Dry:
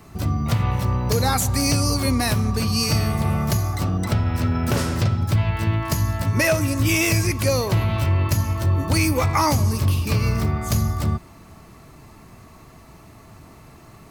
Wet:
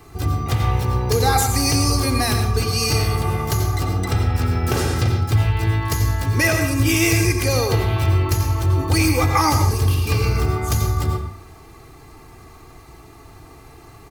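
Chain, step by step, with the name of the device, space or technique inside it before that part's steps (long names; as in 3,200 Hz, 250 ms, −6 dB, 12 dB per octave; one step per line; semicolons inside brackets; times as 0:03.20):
microphone above a desk (comb filter 2.5 ms, depth 64%; convolution reverb RT60 0.50 s, pre-delay 83 ms, DRR 4.5 dB)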